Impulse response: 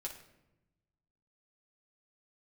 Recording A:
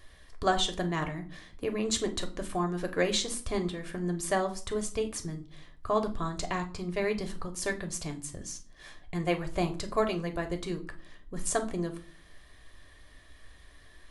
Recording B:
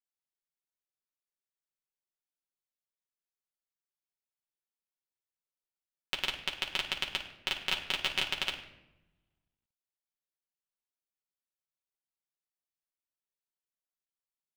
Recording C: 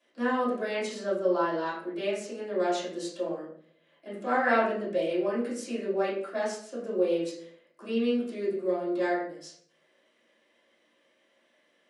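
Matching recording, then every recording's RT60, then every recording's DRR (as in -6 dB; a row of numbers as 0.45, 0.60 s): B; 0.45, 0.95, 0.60 s; 4.5, -2.0, -10.0 dB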